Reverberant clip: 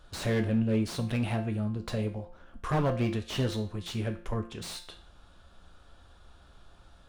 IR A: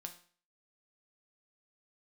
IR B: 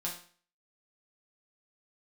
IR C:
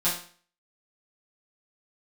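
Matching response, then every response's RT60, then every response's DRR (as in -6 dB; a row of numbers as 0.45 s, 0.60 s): A; 0.45 s, 0.45 s, 0.45 s; 4.5 dB, -4.5 dB, -11.5 dB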